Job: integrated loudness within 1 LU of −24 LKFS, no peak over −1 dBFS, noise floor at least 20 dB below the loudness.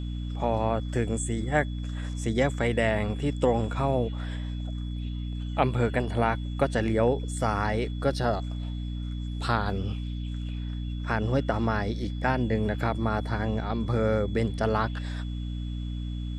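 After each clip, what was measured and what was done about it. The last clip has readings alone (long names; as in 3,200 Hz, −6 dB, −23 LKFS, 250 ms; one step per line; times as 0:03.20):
mains hum 60 Hz; hum harmonics up to 300 Hz; level of the hum −30 dBFS; interfering tone 3,400 Hz; level of the tone −50 dBFS; integrated loudness −28.5 LKFS; sample peak −8.5 dBFS; target loudness −24.0 LKFS
→ mains-hum notches 60/120/180/240/300 Hz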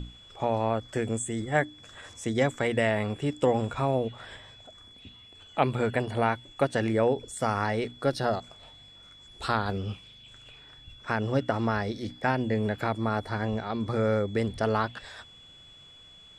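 mains hum none found; interfering tone 3,400 Hz; level of the tone −50 dBFS
→ notch filter 3,400 Hz, Q 30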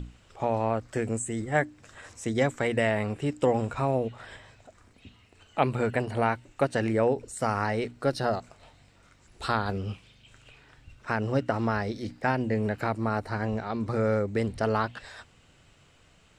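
interfering tone none found; integrated loudness −28.5 LKFS; sample peak −9.0 dBFS; target loudness −24.0 LKFS
→ level +4.5 dB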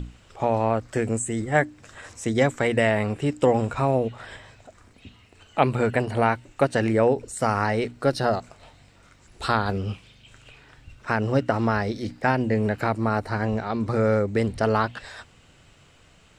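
integrated loudness −24.0 LKFS; sample peak −4.5 dBFS; background noise floor −55 dBFS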